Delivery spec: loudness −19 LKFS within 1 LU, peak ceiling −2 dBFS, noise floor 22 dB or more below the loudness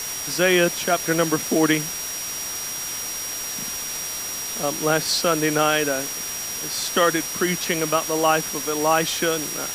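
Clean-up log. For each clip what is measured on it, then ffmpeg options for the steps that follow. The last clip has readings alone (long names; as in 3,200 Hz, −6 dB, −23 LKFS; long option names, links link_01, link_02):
interfering tone 5,700 Hz; level of the tone −30 dBFS; background noise floor −30 dBFS; target noise floor −44 dBFS; integrated loudness −22.0 LKFS; sample peak −5.5 dBFS; target loudness −19.0 LKFS
→ -af "bandreject=frequency=5700:width=30"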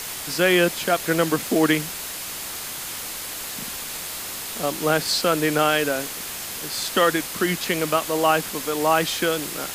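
interfering tone none found; background noise floor −33 dBFS; target noise floor −45 dBFS
→ -af "afftdn=noise_reduction=12:noise_floor=-33"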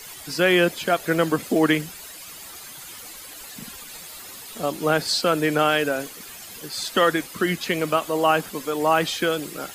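background noise floor −40 dBFS; target noise floor −44 dBFS
→ -af "afftdn=noise_reduction=6:noise_floor=-40"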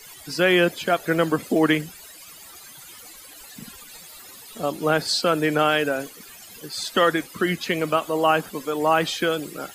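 background noise floor −44 dBFS; target noise floor −45 dBFS
→ -af "afftdn=noise_reduction=6:noise_floor=-44"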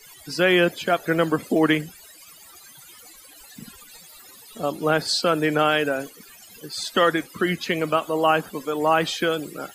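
background noise floor −48 dBFS; integrated loudness −22.0 LKFS; sample peak −7.0 dBFS; target loudness −19.0 LKFS
→ -af "volume=3dB"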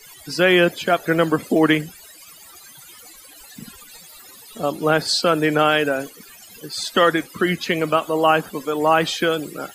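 integrated loudness −19.0 LKFS; sample peak −4.0 dBFS; background noise floor −45 dBFS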